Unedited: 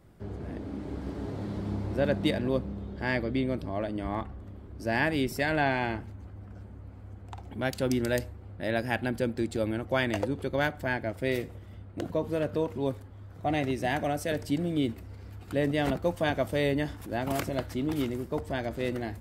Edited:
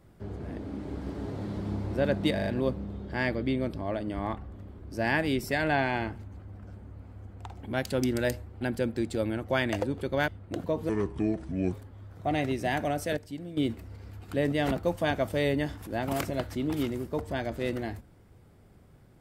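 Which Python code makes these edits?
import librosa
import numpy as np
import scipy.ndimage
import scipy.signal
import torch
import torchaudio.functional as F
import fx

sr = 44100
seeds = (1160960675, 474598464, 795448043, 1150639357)

y = fx.edit(x, sr, fx.stutter(start_s=2.34, slice_s=0.04, count=4),
    fx.cut(start_s=8.49, length_s=0.53),
    fx.cut(start_s=10.69, length_s=1.05),
    fx.speed_span(start_s=12.35, length_s=0.57, speed=0.68),
    fx.clip_gain(start_s=14.36, length_s=0.4, db=-10.0), tone=tone)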